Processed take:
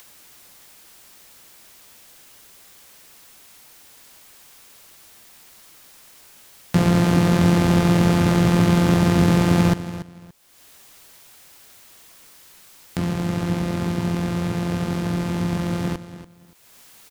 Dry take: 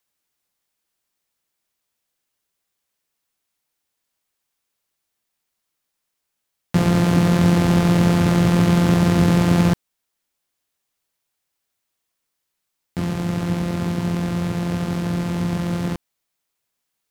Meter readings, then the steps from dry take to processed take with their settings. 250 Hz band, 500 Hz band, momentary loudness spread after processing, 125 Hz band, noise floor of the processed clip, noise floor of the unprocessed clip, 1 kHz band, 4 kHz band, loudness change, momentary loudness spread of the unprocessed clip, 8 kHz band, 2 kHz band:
−1.0 dB, 0.0 dB, 9 LU, −1.0 dB, −49 dBFS, −79 dBFS, +0.5 dB, +0.5 dB, −1.0 dB, 9 LU, +0.5 dB, +0.5 dB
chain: upward compression, threshold −25 dBFS
repeating echo 286 ms, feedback 21%, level −14 dB

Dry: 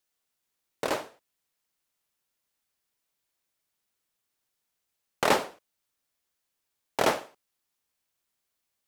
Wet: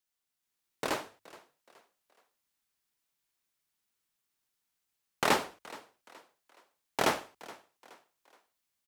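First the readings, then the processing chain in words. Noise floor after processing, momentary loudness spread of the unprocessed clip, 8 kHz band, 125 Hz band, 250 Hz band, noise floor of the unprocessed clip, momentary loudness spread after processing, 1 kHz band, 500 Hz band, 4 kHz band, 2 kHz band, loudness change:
−85 dBFS, 14 LU, −1.5 dB, −2.0 dB, −2.5 dB, −82 dBFS, 21 LU, −3.0 dB, −5.5 dB, −1.5 dB, −2.0 dB, −3.5 dB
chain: parametric band 550 Hz −5 dB 0.8 octaves
mains-hum notches 50/100 Hz
on a send: echo with shifted repeats 422 ms, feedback 39%, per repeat +44 Hz, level −20 dB
on the sum: automatic gain control gain up to 4 dB
level −5.5 dB

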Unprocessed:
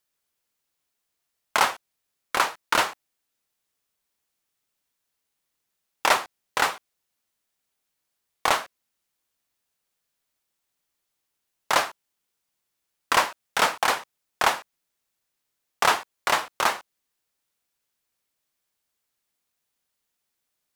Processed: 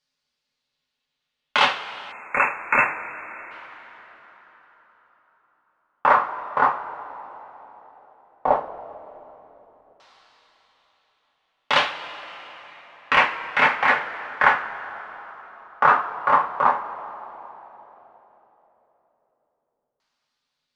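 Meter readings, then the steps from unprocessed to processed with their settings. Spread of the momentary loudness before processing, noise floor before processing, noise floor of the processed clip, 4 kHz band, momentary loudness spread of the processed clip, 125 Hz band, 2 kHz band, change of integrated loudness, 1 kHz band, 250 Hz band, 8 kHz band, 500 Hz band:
8 LU, −80 dBFS, −80 dBFS, −0.5 dB, 20 LU, +4.0 dB, +5.0 dB, +3.5 dB, +5.0 dB, +3.0 dB, below −15 dB, +3.0 dB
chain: coupled-rooms reverb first 0.21 s, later 4.4 s, from −21 dB, DRR −1 dB
time-frequency box erased 0:02.12–0:03.51, 2,700–6,500 Hz
auto-filter low-pass saw down 0.1 Hz 520–4,800 Hz
level −2 dB

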